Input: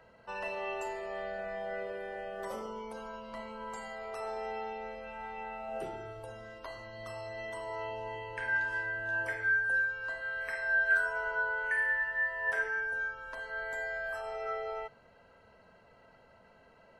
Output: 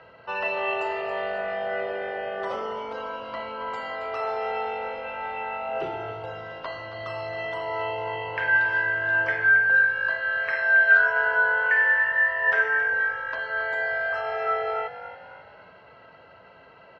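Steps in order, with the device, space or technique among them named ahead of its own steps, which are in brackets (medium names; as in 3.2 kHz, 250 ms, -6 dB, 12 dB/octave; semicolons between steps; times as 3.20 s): frequency-shifting delay pedal into a guitar cabinet (frequency-shifting echo 273 ms, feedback 45%, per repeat +50 Hz, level -12 dB; cabinet simulation 86–4500 Hz, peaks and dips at 220 Hz -9 dB, 1.3 kHz +4 dB, 2.8 kHz +4 dB); trim +9 dB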